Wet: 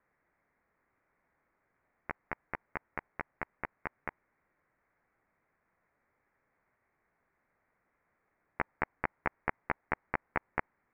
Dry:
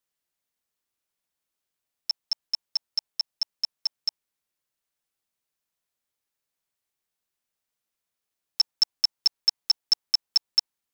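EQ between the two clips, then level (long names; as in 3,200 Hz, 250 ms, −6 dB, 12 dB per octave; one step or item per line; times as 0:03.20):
Butterworth low-pass 2,200 Hz 72 dB per octave
+16.5 dB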